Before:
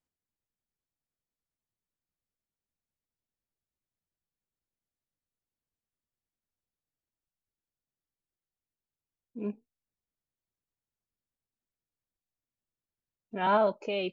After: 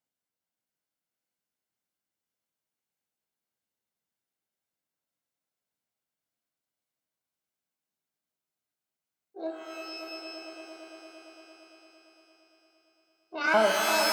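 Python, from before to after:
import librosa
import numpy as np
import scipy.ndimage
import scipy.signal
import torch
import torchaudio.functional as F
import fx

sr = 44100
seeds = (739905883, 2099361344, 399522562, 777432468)

y = fx.pitch_trill(x, sr, semitones=8.0, every_ms=282)
y = scipy.signal.sosfilt(scipy.signal.butter(2, 180.0, 'highpass', fs=sr, output='sos'), y)
y = y + 0.31 * np.pad(y, (int(1.4 * sr / 1000.0), 0))[:len(y)]
y = fx.echo_swell(y, sr, ms=114, loudest=5, wet_db=-10)
y = fx.rev_shimmer(y, sr, seeds[0], rt60_s=1.4, semitones=12, shimmer_db=-2, drr_db=4.0)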